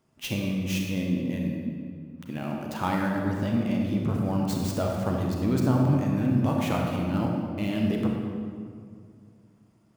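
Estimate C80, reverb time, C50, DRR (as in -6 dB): 2.5 dB, 2.2 s, 1.0 dB, -0.5 dB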